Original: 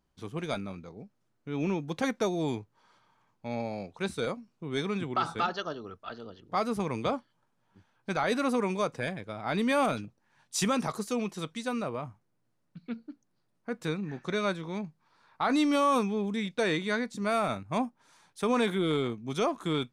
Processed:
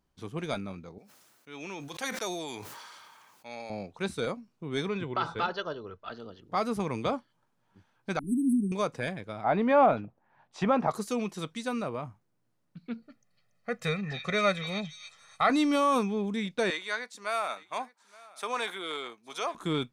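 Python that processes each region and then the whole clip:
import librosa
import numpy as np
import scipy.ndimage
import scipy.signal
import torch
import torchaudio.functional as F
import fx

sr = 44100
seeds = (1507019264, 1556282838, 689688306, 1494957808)

y = fx.chain(x, sr, fx.highpass(hz=1300.0, slope=6),
    fx.high_shelf(hz=7200.0, db=9.0),
    fx.sustainer(db_per_s=26.0), at=(0.98, 3.7))
y = fx.chain(y, sr, fx.lowpass(hz=4500.0, slope=12),
    fx.comb(ms=2.0, depth=0.37), at=(4.88, 6.05))
y = fx.chain(y, sr, fx.brickwall_bandstop(low_hz=390.0, high_hz=7900.0),
    fx.comb(ms=4.2, depth=0.96), at=(8.19, 8.72))
y = fx.chain(y, sr, fx.lowpass(hz=2100.0, slope=12),
    fx.peak_eq(hz=720.0, db=9.5, octaves=0.93), at=(9.44, 10.91))
y = fx.chain(y, sr, fx.peak_eq(hz=2100.0, db=9.5, octaves=0.55),
    fx.comb(ms=1.6, depth=0.86),
    fx.echo_stepped(ms=283, hz=3700.0, octaves=0.7, feedback_pct=70, wet_db=-2.5), at=(13.02, 15.5))
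y = fx.chain(y, sr, fx.highpass(hz=750.0, slope=12),
    fx.echo_single(ms=869, db=-22.0), at=(16.7, 19.55))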